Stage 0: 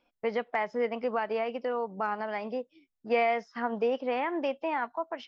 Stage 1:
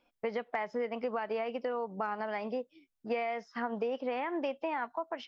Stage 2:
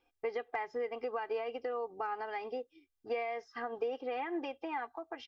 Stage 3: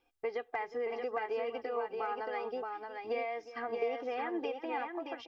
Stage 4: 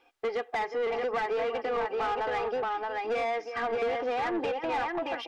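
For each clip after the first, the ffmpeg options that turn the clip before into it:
-af "acompressor=threshold=0.0316:ratio=6"
-af "equalizer=f=86:t=o:w=0.28:g=12,aecho=1:1:2.5:0.9,volume=0.531"
-af "aecho=1:1:361|625:0.168|0.596"
-filter_complex "[0:a]asplit=2[s0][s1];[s1]highpass=f=720:p=1,volume=12.6,asoftclip=type=tanh:threshold=0.0841[s2];[s0][s2]amix=inputs=2:normalize=0,lowpass=f=2200:p=1,volume=0.501"

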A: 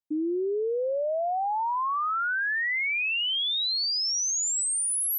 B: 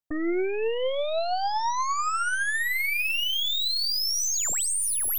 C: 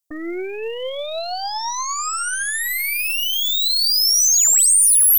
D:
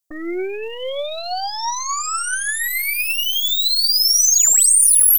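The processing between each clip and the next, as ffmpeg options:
-af "aeval=exprs='0.0631*(cos(1*acos(clip(val(0)/0.0631,-1,1)))-cos(1*PI/2))+0.0158*(cos(6*acos(clip(val(0)/0.0631,-1,1)))-cos(6*PI/2))':c=same,aphaser=in_gain=1:out_gain=1:delay=3.3:decay=0.27:speed=1.5:type=triangular"
-af "bass=f=250:g=-5,treble=f=4000:g=14"
-af "aecho=1:1:5.3:0.46"

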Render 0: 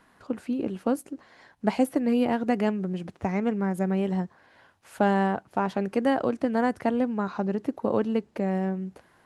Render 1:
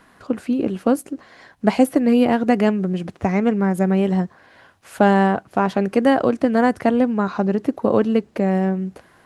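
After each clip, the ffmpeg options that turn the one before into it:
-af "bandreject=f=890:w=13,volume=2.51"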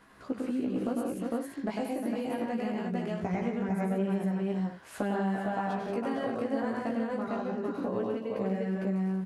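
-af "aecho=1:1:99|134|179|354|454|512:0.668|0.501|0.473|0.299|0.668|0.251,acompressor=threshold=0.0794:ratio=6,flanger=delay=15:depth=3.2:speed=0.22,volume=0.631"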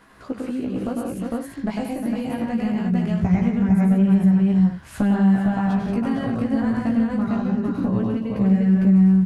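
-af "asubboost=boost=11:cutoff=140,volume=2"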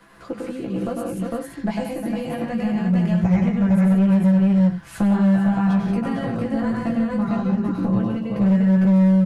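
-filter_complex "[0:a]aecho=1:1:5.9:0.6,acrossover=split=130|480[s0][s1][s2];[s1]asoftclip=type=hard:threshold=0.15[s3];[s0][s3][s2]amix=inputs=3:normalize=0"

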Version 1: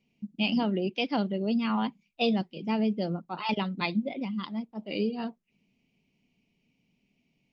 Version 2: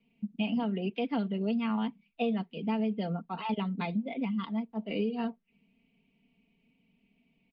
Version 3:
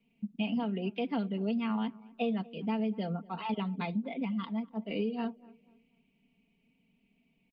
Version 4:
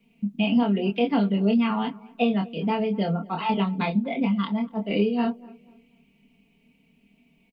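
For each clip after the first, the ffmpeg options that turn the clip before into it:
-filter_complex "[0:a]lowpass=f=3500:w=0.5412,lowpass=f=3500:w=1.3066,aecho=1:1:4.4:0.66,acrossover=split=480|960|2300[s0][s1][s2][s3];[s0]acompressor=threshold=0.0316:ratio=4[s4];[s1]acompressor=threshold=0.01:ratio=4[s5];[s2]acompressor=threshold=0.00631:ratio=4[s6];[s3]acompressor=threshold=0.00447:ratio=4[s7];[s4][s5][s6][s7]amix=inputs=4:normalize=0"
-filter_complex "[0:a]asplit=2[s0][s1];[s1]adelay=242,lowpass=f=1200:p=1,volume=0.0891,asplit=2[s2][s3];[s3]adelay=242,lowpass=f=1200:p=1,volume=0.36,asplit=2[s4][s5];[s5]adelay=242,lowpass=f=1200:p=1,volume=0.36[s6];[s0][s2][s4][s6]amix=inputs=4:normalize=0,volume=0.841"
-filter_complex "[0:a]asplit=2[s0][s1];[s1]adelay=25,volume=0.631[s2];[s0][s2]amix=inputs=2:normalize=0,volume=2.66"

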